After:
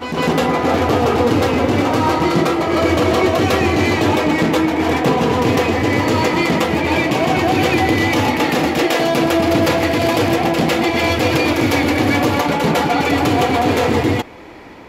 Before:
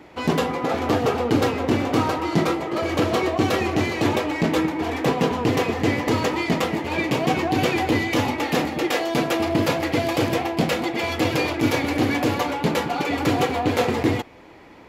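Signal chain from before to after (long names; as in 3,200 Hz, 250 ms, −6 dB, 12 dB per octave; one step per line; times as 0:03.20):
brickwall limiter −15 dBFS, peak gain reduction 7 dB
on a send: backwards echo 153 ms −5.5 dB
on the sum: level +8 dB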